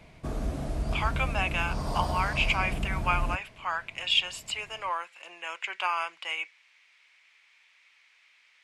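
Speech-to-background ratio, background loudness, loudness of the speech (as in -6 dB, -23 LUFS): 3.0 dB, -33.5 LUFS, -30.5 LUFS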